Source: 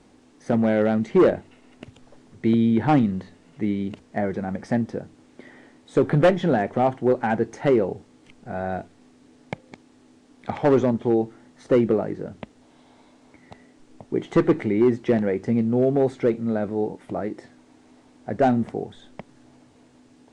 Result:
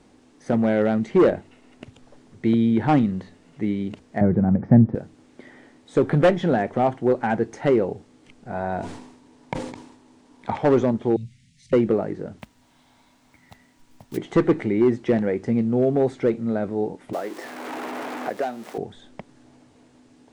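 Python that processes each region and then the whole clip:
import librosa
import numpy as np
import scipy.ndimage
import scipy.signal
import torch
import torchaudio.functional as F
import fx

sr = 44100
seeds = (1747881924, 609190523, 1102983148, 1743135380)

y = fx.chain(x, sr, fx.lowpass(hz=1300.0, slope=12),
    fx.peak_eq(hz=130.0, db=15.0, octaves=2.0), at=(4.21, 4.95))
y = fx.chain(y, sr, fx.peak_eq(hz=950.0, db=12.5, octaves=0.2),
    fx.sustainer(db_per_s=62.0), at=(8.51, 10.56))
y = fx.chain(y, sr, fx.cheby1_bandstop(low_hz=190.0, high_hz=2200.0, order=4),
    fx.peak_eq(hz=110.0, db=5.5, octaves=0.72),
    fx.transient(attack_db=-7, sustain_db=2), at=(11.16, 11.73))
y = fx.block_float(y, sr, bits=5, at=(12.38, 14.16), fade=0.02)
y = fx.peak_eq(y, sr, hz=410.0, db=-12.0, octaves=1.5, at=(12.38, 14.16), fade=0.02)
y = fx.dmg_tone(y, sr, hz=960.0, level_db=-71.0, at=(12.38, 14.16), fade=0.02)
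y = fx.chain(y, sr, fx.zero_step(step_db=-37.5),
    fx.highpass(hz=440.0, slope=12),
    fx.band_squash(depth_pct=100), at=(17.13, 18.78))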